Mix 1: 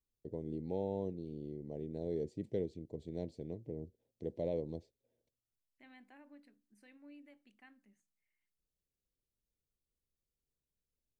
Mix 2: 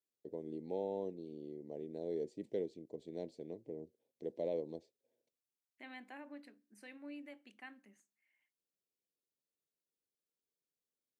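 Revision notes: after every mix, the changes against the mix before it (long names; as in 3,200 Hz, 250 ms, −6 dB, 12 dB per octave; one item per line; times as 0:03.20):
second voice +9.5 dB
master: add high-pass filter 280 Hz 12 dB per octave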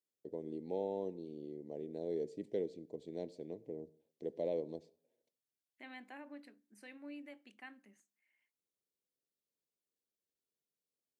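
first voice: send on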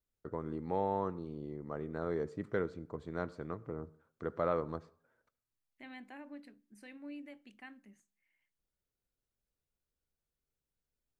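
first voice: remove Butterworth band-reject 1,300 Hz, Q 0.54
master: remove high-pass filter 280 Hz 12 dB per octave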